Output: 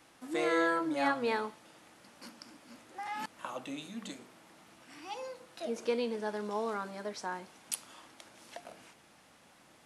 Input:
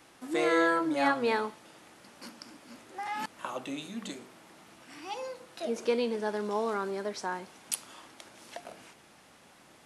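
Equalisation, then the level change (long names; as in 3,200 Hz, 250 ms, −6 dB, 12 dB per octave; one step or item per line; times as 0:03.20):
notch filter 390 Hz, Q 12
−3.5 dB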